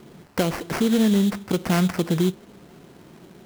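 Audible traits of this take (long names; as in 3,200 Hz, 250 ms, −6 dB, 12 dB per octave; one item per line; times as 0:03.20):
aliases and images of a low sample rate 3,600 Hz, jitter 20%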